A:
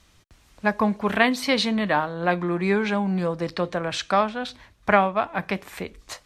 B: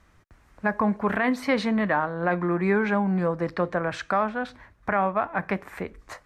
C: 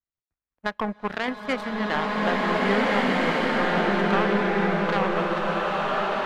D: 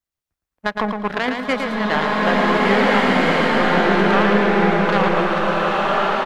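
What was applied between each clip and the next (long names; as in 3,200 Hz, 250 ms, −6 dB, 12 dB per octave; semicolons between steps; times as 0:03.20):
high shelf with overshoot 2,400 Hz −9.5 dB, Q 1.5; brickwall limiter −12.5 dBFS, peak gain reduction 10.5 dB
fade-out on the ending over 1.22 s; power curve on the samples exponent 2; slow-attack reverb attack 1,820 ms, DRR −7 dB
repeating echo 112 ms, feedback 26%, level −5.5 dB; level +5.5 dB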